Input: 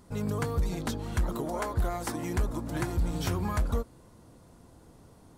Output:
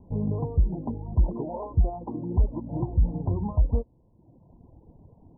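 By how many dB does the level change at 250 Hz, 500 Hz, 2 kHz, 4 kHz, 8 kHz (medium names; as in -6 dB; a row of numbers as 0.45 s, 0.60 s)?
+2.0 dB, 0.0 dB, under -40 dB, under -40 dB, under -35 dB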